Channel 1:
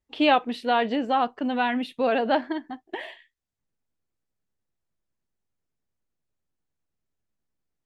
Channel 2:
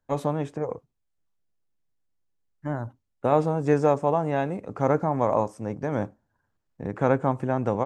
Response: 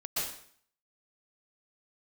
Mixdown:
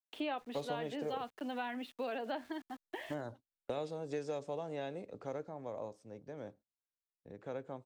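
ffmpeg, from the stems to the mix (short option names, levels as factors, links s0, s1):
-filter_complex "[0:a]highpass=f=220:w=0.5412,highpass=f=220:w=1.3066,aeval=exprs='val(0)*gte(abs(val(0)),0.00631)':c=same,volume=0.355[s0];[1:a]agate=range=0.126:threshold=0.00891:ratio=16:detection=peak,equalizer=f=500:t=o:w=1:g=6,equalizer=f=1000:t=o:w=1:g=-5,equalizer=f=4000:t=o:w=1:g=12,adelay=450,volume=0.531,afade=t=out:st=3.33:d=0.61:silence=0.446684,afade=t=out:st=4.99:d=0.52:silence=0.375837[s1];[s0][s1]amix=inputs=2:normalize=0,acrossover=split=250|2300[s2][s3][s4];[s2]acompressor=threshold=0.00224:ratio=4[s5];[s3]acompressor=threshold=0.0126:ratio=4[s6];[s4]acompressor=threshold=0.00251:ratio=4[s7];[s5][s6][s7]amix=inputs=3:normalize=0"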